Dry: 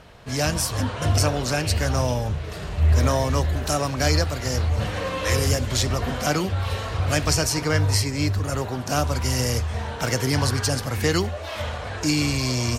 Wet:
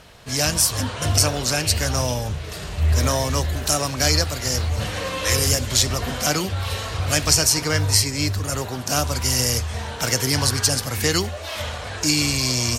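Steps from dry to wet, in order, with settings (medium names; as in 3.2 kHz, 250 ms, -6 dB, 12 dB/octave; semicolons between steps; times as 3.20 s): treble shelf 3.1 kHz +10.5 dB; trim -1 dB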